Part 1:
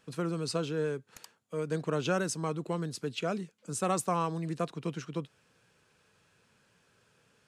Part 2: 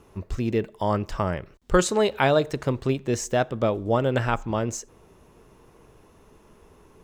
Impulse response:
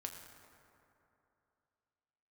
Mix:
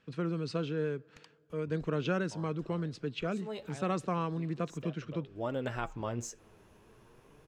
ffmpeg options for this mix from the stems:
-filter_complex "[0:a]lowpass=3.2k,equalizer=f=830:w=0.98:g=-6.5,volume=0dB,asplit=3[a][b][c];[b]volume=-19dB[d];[1:a]acompressor=threshold=-33dB:ratio=1.5,flanger=delay=1.7:depth=7.9:regen=46:speed=0.29:shape=sinusoidal,adelay=1500,volume=-2.5dB[e];[c]apad=whole_len=376210[f];[e][f]sidechaincompress=threshold=-53dB:ratio=5:attack=12:release=171[g];[2:a]atrim=start_sample=2205[h];[d][h]afir=irnorm=-1:irlink=0[i];[a][g][i]amix=inputs=3:normalize=0"

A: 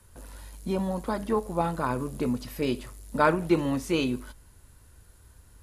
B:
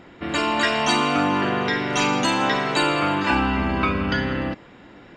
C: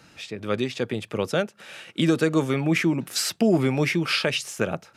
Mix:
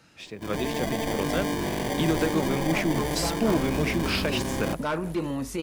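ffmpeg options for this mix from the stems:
-filter_complex "[0:a]adelay=1650,volume=1dB[a];[1:a]dynaudnorm=f=140:g=9:m=11.5dB,acrusher=samples=33:mix=1:aa=0.000001,adelay=200,volume=-8dB[b];[2:a]volume=-5dB[c];[a][b]amix=inputs=2:normalize=0,volume=16dB,asoftclip=hard,volume=-16dB,alimiter=limit=-22dB:level=0:latency=1:release=62,volume=0dB[d];[c][d]amix=inputs=2:normalize=0"

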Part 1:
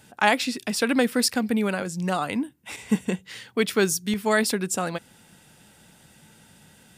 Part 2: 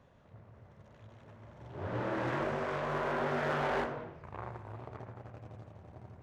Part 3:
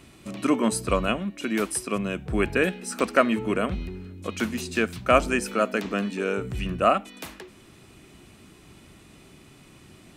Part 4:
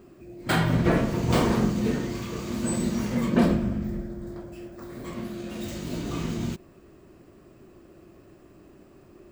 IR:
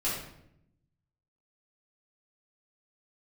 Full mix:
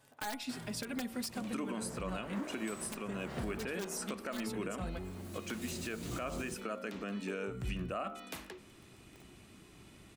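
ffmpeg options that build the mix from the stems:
-filter_complex "[0:a]aeval=exprs='(mod(3.76*val(0)+1,2)-1)/3.76':c=same,asplit=2[a][b];[b]adelay=4.2,afreqshift=-0.37[c];[a][c]amix=inputs=2:normalize=1,volume=-10.5dB,asplit=2[d][e];[1:a]highpass=310,alimiter=level_in=6.5dB:limit=-24dB:level=0:latency=1,volume=-6.5dB,volume=-6dB[f];[2:a]adelay=1100,volume=-6dB[g];[3:a]equalizer=f=10k:t=o:w=1:g=14.5,bandreject=f=50:t=h:w=6,bandreject=f=100:t=h:w=6,bandreject=f=150:t=h:w=6,bandreject=f=200:t=h:w=6,bandreject=f=250:t=h:w=6,acrusher=bits=6:mix=0:aa=0.000001,volume=-9dB[h];[e]apad=whole_len=410594[i];[h][i]sidechaincompress=threshold=-53dB:ratio=10:attack=25:release=454[j];[d][f][g][j]amix=inputs=4:normalize=0,bandreject=f=76.78:t=h:w=4,bandreject=f=153.56:t=h:w=4,bandreject=f=230.34:t=h:w=4,bandreject=f=307.12:t=h:w=4,bandreject=f=383.9:t=h:w=4,bandreject=f=460.68:t=h:w=4,bandreject=f=537.46:t=h:w=4,bandreject=f=614.24:t=h:w=4,bandreject=f=691.02:t=h:w=4,bandreject=f=767.8:t=h:w=4,bandreject=f=844.58:t=h:w=4,bandreject=f=921.36:t=h:w=4,bandreject=f=998.14:t=h:w=4,bandreject=f=1.07492k:t=h:w=4,bandreject=f=1.1517k:t=h:w=4,bandreject=f=1.22848k:t=h:w=4,bandreject=f=1.30526k:t=h:w=4,bandreject=f=1.38204k:t=h:w=4,bandreject=f=1.45882k:t=h:w=4,alimiter=level_in=4.5dB:limit=-24dB:level=0:latency=1:release=214,volume=-4.5dB"

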